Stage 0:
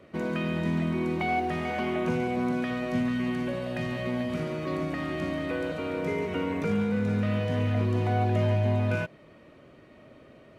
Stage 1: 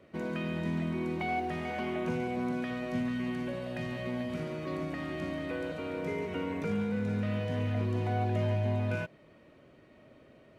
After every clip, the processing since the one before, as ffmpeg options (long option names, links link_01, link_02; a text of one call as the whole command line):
ffmpeg -i in.wav -af "bandreject=frequency=1200:width=17,volume=-5dB" out.wav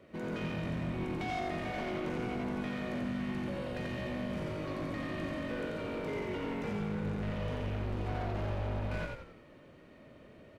ffmpeg -i in.wav -filter_complex "[0:a]asoftclip=type=tanh:threshold=-34.5dB,asplit=6[link_01][link_02][link_03][link_04][link_05][link_06];[link_02]adelay=88,afreqshift=-49,volume=-3dB[link_07];[link_03]adelay=176,afreqshift=-98,volume=-10.5dB[link_08];[link_04]adelay=264,afreqshift=-147,volume=-18.1dB[link_09];[link_05]adelay=352,afreqshift=-196,volume=-25.6dB[link_10];[link_06]adelay=440,afreqshift=-245,volume=-33.1dB[link_11];[link_01][link_07][link_08][link_09][link_10][link_11]amix=inputs=6:normalize=0" out.wav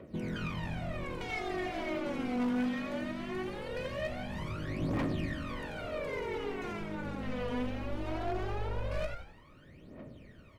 ffmpeg -i in.wav -af "aphaser=in_gain=1:out_gain=1:delay=4.2:decay=0.77:speed=0.2:type=triangular,aeval=exprs='0.0668*(abs(mod(val(0)/0.0668+3,4)-2)-1)':channel_layout=same,volume=-2.5dB" out.wav